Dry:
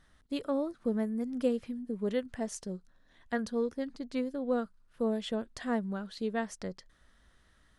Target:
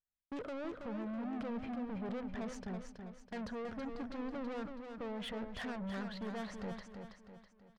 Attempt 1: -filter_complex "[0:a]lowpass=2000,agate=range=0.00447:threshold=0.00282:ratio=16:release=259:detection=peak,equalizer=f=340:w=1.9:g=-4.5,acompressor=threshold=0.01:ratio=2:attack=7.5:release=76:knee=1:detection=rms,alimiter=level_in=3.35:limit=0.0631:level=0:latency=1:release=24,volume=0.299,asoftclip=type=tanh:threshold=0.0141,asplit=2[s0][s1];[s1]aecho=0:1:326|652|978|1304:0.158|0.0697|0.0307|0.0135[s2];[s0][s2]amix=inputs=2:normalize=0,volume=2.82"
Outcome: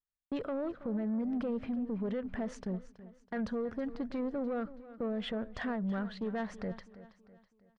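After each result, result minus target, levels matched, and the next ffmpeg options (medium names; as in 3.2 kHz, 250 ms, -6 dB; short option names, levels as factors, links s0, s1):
compression: peak gain reduction +9 dB; saturation: distortion -11 dB; echo-to-direct -9.5 dB
-filter_complex "[0:a]lowpass=2000,agate=range=0.00447:threshold=0.00282:ratio=16:release=259:detection=peak,equalizer=f=340:w=1.9:g=-4.5,alimiter=level_in=3.35:limit=0.0631:level=0:latency=1:release=24,volume=0.299,asoftclip=type=tanh:threshold=0.0141,asplit=2[s0][s1];[s1]aecho=0:1:326|652|978|1304:0.158|0.0697|0.0307|0.0135[s2];[s0][s2]amix=inputs=2:normalize=0,volume=2.82"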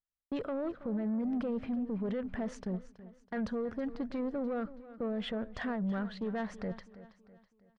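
saturation: distortion -11 dB; echo-to-direct -9.5 dB
-filter_complex "[0:a]lowpass=2000,agate=range=0.00447:threshold=0.00282:ratio=16:release=259:detection=peak,equalizer=f=340:w=1.9:g=-4.5,alimiter=level_in=3.35:limit=0.0631:level=0:latency=1:release=24,volume=0.299,asoftclip=type=tanh:threshold=0.00376,asplit=2[s0][s1];[s1]aecho=0:1:326|652|978|1304:0.158|0.0697|0.0307|0.0135[s2];[s0][s2]amix=inputs=2:normalize=0,volume=2.82"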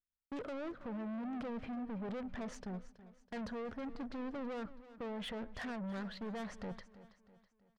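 echo-to-direct -9.5 dB
-filter_complex "[0:a]lowpass=2000,agate=range=0.00447:threshold=0.00282:ratio=16:release=259:detection=peak,equalizer=f=340:w=1.9:g=-4.5,alimiter=level_in=3.35:limit=0.0631:level=0:latency=1:release=24,volume=0.299,asoftclip=type=tanh:threshold=0.00376,asplit=2[s0][s1];[s1]aecho=0:1:326|652|978|1304|1630:0.473|0.208|0.0916|0.0403|0.0177[s2];[s0][s2]amix=inputs=2:normalize=0,volume=2.82"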